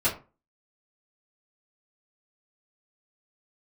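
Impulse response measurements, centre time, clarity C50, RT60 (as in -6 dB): 21 ms, 11.0 dB, 0.30 s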